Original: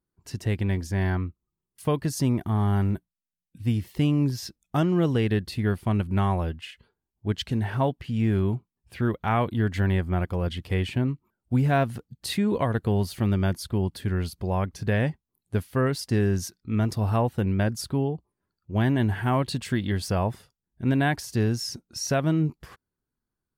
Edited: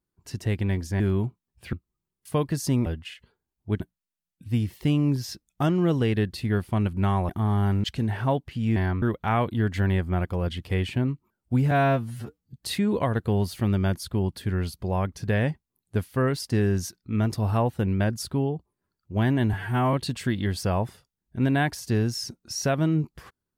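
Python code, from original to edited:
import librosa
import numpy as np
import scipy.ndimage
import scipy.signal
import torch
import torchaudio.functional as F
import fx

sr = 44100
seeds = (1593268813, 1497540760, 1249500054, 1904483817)

y = fx.edit(x, sr, fx.swap(start_s=1.0, length_s=0.26, other_s=8.29, other_length_s=0.73),
    fx.swap(start_s=2.39, length_s=0.55, other_s=6.43, other_length_s=0.94),
    fx.stretch_span(start_s=11.71, length_s=0.41, factor=2.0),
    fx.stretch_span(start_s=19.12, length_s=0.27, factor=1.5), tone=tone)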